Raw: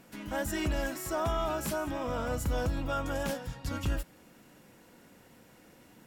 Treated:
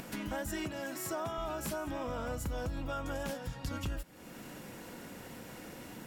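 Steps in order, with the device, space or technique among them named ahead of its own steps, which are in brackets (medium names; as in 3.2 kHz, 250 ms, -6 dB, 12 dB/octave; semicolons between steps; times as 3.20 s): upward and downward compression (upward compressor, threshold -50 dBFS; compression 4:1, threshold -45 dBFS, peak gain reduction 15.5 dB); 0.65–1.38 s: high-pass 100 Hz 24 dB/octave; trim +8 dB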